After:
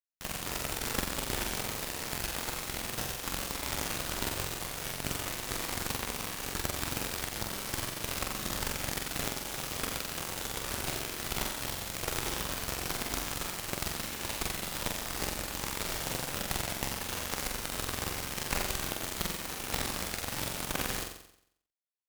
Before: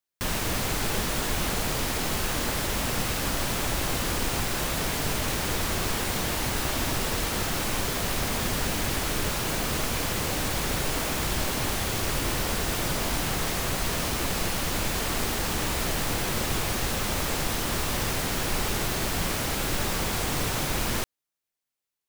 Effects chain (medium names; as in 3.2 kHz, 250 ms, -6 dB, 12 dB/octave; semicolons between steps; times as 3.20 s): Chebyshev shaper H 3 -9 dB, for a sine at -13.5 dBFS; flutter echo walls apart 7.7 m, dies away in 0.7 s; trim +4.5 dB